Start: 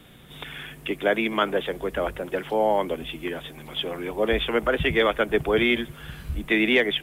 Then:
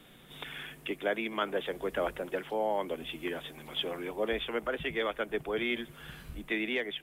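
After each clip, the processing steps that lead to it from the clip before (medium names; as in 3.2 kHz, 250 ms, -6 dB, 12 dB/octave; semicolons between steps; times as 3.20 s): gain riding within 4 dB 0.5 s; peaking EQ 76 Hz -10.5 dB 1.5 oct; trim -8.5 dB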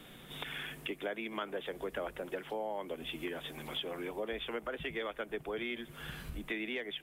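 compression 3:1, threshold -41 dBFS, peak gain reduction 11.5 dB; trim +3 dB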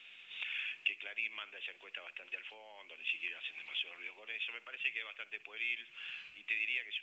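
band-pass filter 2.6 kHz, Q 8.5; reverberation, pre-delay 57 ms, DRR 19.5 dB; trim +11.5 dB; µ-law 128 kbps 16 kHz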